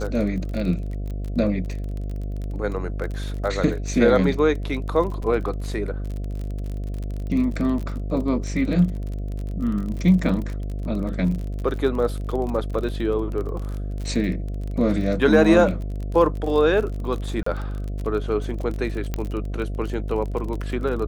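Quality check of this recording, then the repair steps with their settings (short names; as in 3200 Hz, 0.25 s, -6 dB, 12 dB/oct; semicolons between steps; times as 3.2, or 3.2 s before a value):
buzz 50 Hz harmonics 14 -28 dBFS
crackle 34/s -29 dBFS
5.22 gap 4.8 ms
17.43–17.46 gap 34 ms
19.14 pop -12 dBFS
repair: de-click; de-hum 50 Hz, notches 14; interpolate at 5.22, 4.8 ms; interpolate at 17.43, 34 ms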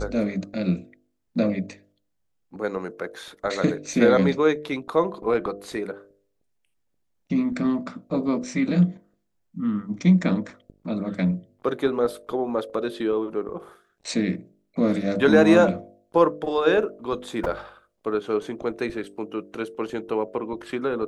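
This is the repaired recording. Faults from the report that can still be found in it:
none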